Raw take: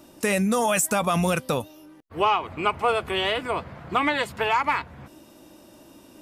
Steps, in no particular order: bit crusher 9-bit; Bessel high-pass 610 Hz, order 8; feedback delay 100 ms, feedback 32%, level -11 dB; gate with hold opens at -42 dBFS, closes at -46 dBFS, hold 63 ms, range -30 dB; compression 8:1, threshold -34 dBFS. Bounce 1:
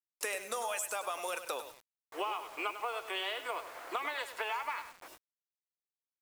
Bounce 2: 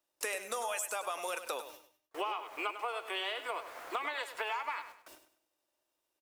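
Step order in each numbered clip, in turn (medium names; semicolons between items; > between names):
Bessel high-pass > compression > gate with hold > feedback delay > bit crusher; Bessel high-pass > bit crusher > gate with hold > compression > feedback delay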